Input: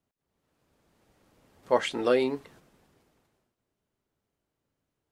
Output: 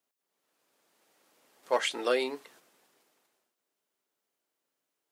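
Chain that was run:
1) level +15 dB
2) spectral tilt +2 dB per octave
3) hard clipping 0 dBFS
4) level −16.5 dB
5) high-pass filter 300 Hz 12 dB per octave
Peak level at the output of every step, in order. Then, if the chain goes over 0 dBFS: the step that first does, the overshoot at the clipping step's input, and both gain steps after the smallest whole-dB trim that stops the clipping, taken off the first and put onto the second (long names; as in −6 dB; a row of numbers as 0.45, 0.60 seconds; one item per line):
+4.5, +4.0, 0.0, −16.5, −14.5 dBFS
step 1, 4.0 dB
step 1 +11 dB, step 4 −12.5 dB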